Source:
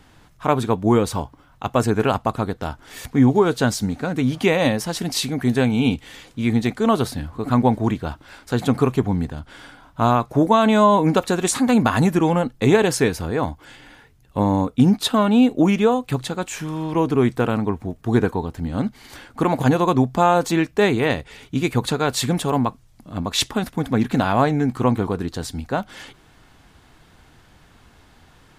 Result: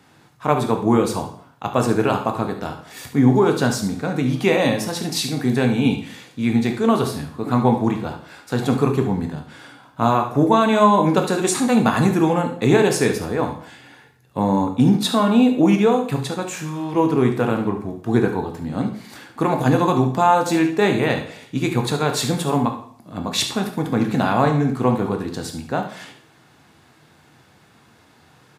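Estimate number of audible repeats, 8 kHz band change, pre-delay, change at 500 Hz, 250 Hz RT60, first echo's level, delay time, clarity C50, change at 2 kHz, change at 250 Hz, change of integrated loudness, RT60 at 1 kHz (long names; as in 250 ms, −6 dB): 1, +0.5 dB, 6 ms, +0.5 dB, 0.60 s, −12.0 dB, 71 ms, 8.0 dB, +0.5 dB, +0.5 dB, +0.5 dB, 0.60 s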